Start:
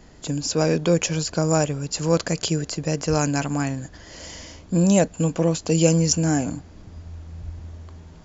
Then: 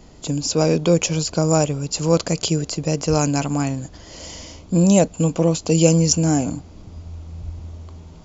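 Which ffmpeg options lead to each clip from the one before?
-af "equalizer=f=1.7k:w=3.4:g=-9.5,volume=3dB"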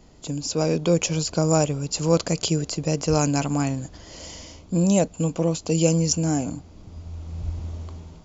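-af "dynaudnorm=f=340:g=5:m=10.5dB,volume=-6dB"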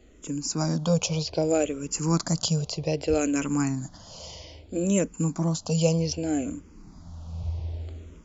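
-filter_complex "[0:a]asplit=2[a][b];[b]afreqshift=-0.63[c];[a][c]amix=inputs=2:normalize=1"

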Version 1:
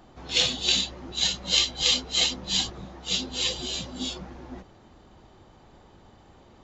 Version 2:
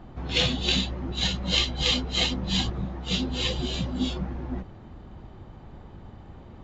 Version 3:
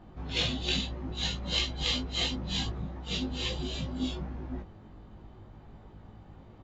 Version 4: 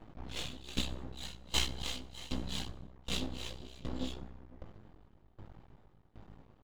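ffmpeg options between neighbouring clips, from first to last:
-af "bass=f=250:g=9,treble=f=4k:g=-13,volume=3dB"
-filter_complex "[0:a]asplit=2[a][b];[b]adelay=19,volume=-3dB[c];[a][c]amix=inputs=2:normalize=0,volume=-7.5dB"
-af "aeval=exprs='max(val(0),0)':c=same,aecho=1:1:92|184|276:0.1|0.043|0.0185,aeval=exprs='val(0)*pow(10,-19*if(lt(mod(1.3*n/s,1),2*abs(1.3)/1000),1-mod(1.3*n/s,1)/(2*abs(1.3)/1000),(mod(1.3*n/s,1)-2*abs(1.3)/1000)/(1-2*abs(1.3)/1000))/20)':c=same,volume=3dB"

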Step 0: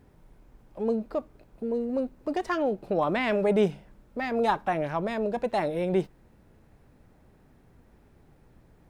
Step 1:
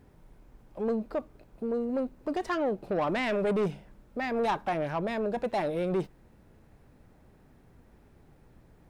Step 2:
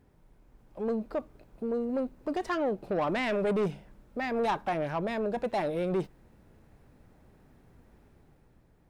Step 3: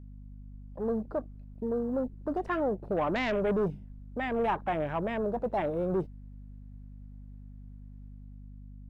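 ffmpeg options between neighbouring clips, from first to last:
-af "asoftclip=type=tanh:threshold=-22.5dB"
-af "dynaudnorm=f=110:g=13:m=5dB,volume=-5.5dB"
-af "acrusher=bits=8:mode=log:mix=0:aa=0.000001,afwtdn=0.00794,aeval=exprs='val(0)+0.00562*(sin(2*PI*50*n/s)+sin(2*PI*2*50*n/s)/2+sin(2*PI*3*50*n/s)/3+sin(2*PI*4*50*n/s)/4+sin(2*PI*5*50*n/s)/5)':c=same"

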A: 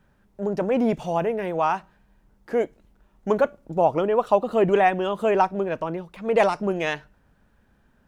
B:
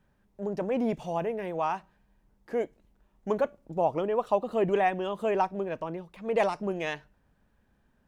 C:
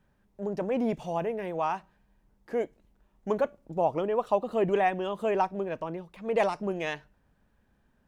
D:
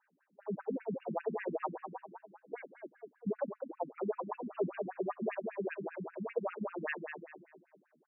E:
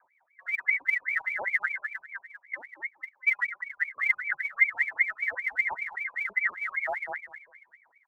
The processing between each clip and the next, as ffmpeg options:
-af "equalizer=f=1.4k:t=o:w=0.21:g=-4.5,volume=-6.5dB"
-af anull
-filter_complex "[0:a]alimiter=level_in=0.5dB:limit=-24dB:level=0:latency=1:release=317,volume=-0.5dB,asplit=2[a][b];[b]adelay=215,lowpass=f=2k:p=1,volume=-5.5dB,asplit=2[c][d];[d]adelay=215,lowpass=f=2k:p=1,volume=0.47,asplit=2[e][f];[f]adelay=215,lowpass=f=2k:p=1,volume=0.47,asplit=2[g][h];[h]adelay=215,lowpass=f=2k:p=1,volume=0.47,asplit=2[i][j];[j]adelay=215,lowpass=f=2k:p=1,volume=0.47,asplit=2[k][l];[l]adelay=215,lowpass=f=2k:p=1,volume=0.47[m];[a][c][e][g][i][k][m]amix=inputs=7:normalize=0,afftfilt=real='re*between(b*sr/1024,210*pow(2100/210,0.5+0.5*sin(2*PI*5.1*pts/sr))/1.41,210*pow(2100/210,0.5+0.5*sin(2*PI*5.1*pts/sr))*1.41)':imag='im*between(b*sr/1024,210*pow(2100/210,0.5+0.5*sin(2*PI*5.1*pts/sr))/1.41,210*pow(2100/210,0.5+0.5*sin(2*PI*5.1*pts/sr))*1.41)':win_size=1024:overlap=0.75,volume=3dB"
-af "lowpass=f=2.1k:t=q:w=0.5098,lowpass=f=2.1k:t=q:w=0.6013,lowpass=f=2.1k:t=q:w=0.9,lowpass=f=2.1k:t=q:w=2.563,afreqshift=-2500,aemphasis=mode=production:type=bsi,aphaser=in_gain=1:out_gain=1:delay=1.9:decay=0.54:speed=1.4:type=sinusoidal,volume=5dB"

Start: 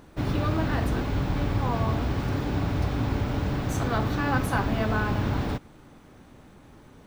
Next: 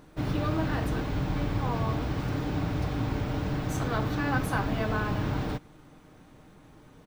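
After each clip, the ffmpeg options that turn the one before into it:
-af "aecho=1:1:6.5:0.32,volume=-3dB"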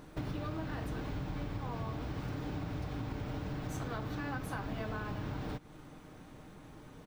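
-af "acompressor=threshold=-37dB:ratio=6,volume=1dB"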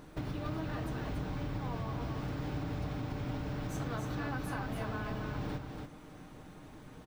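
-af "aecho=1:1:284:0.562"

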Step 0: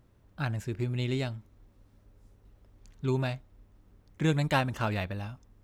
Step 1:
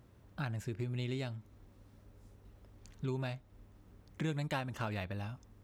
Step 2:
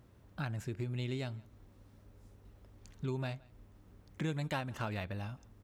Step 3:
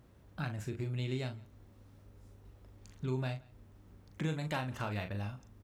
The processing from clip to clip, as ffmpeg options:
-af "highpass=49,acompressor=threshold=-42dB:ratio=2.5,volume=2.5dB"
-filter_complex "[0:a]asplit=2[a][b];[b]adelay=169.1,volume=-24dB,highshelf=f=4k:g=-3.8[c];[a][c]amix=inputs=2:normalize=0"
-filter_complex "[0:a]asplit=2[a][b];[b]adelay=39,volume=-7.5dB[c];[a][c]amix=inputs=2:normalize=0"

